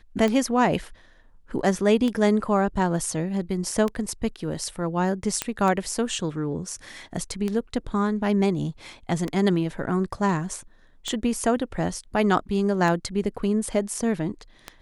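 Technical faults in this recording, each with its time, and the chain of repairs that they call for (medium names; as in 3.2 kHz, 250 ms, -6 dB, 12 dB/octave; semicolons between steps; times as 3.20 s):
tick 33 1/3 rpm -14 dBFS
5.42 s: pop -7 dBFS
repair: de-click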